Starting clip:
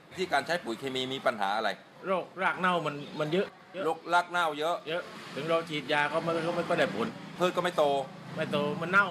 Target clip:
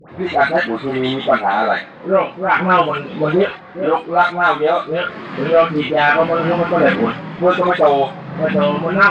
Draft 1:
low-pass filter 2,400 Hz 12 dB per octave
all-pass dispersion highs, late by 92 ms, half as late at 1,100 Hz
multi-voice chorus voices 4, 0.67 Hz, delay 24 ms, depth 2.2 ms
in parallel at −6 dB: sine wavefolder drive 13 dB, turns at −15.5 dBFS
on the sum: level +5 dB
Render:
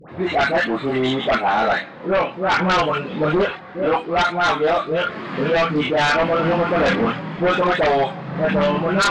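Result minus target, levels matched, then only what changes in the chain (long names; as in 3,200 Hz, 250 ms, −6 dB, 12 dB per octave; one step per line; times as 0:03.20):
sine wavefolder: distortion +20 dB
change: sine wavefolder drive 13 dB, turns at −5 dBFS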